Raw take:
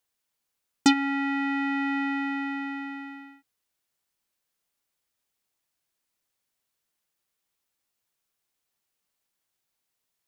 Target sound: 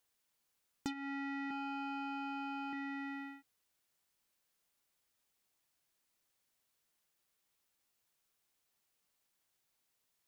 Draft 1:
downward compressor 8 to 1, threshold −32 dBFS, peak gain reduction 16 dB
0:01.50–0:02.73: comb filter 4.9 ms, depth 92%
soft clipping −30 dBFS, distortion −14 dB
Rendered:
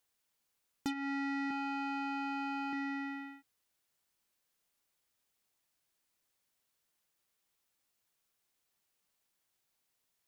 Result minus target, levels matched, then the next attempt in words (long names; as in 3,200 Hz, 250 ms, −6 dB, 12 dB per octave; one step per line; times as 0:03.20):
downward compressor: peak gain reduction −5.5 dB
downward compressor 8 to 1, threshold −38.5 dBFS, peak gain reduction 22 dB
0:01.50–0:02.73: comb filter 4.9 ms, depth 92%
soft clipping −30 dBFS, distortion −22 dB